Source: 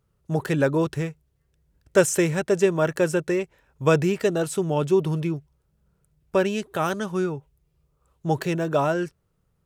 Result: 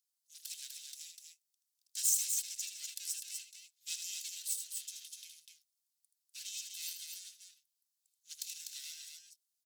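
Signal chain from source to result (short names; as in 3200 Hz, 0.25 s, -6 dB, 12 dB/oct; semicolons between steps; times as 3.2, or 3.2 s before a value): minimum comb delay 1.9 ms; inverse Chebyshev high-pass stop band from 970 Hz, stop band 70 dB; on a send: loudspeakers at several distances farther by 27 m -7 dB, 85 m -5 dB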